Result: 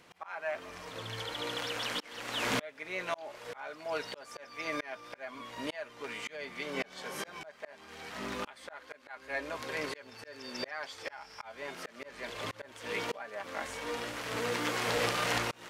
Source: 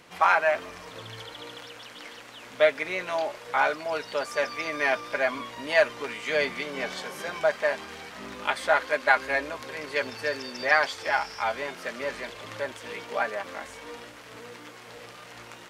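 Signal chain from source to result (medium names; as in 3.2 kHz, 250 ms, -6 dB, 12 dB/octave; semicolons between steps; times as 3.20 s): recorder AGC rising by 11 dB/s; slow attack 519 ms; trim -6.5 dB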